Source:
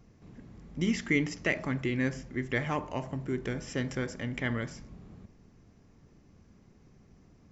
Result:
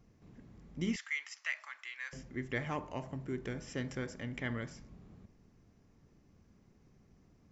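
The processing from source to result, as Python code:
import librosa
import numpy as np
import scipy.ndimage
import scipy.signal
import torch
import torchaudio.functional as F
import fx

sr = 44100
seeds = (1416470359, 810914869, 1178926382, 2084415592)

y = fx.highpass(x, sr, hz=1100.0, slope=24, at=(0.96, 2.13))
y = y * librosa.db_to_amplitude(-6.0)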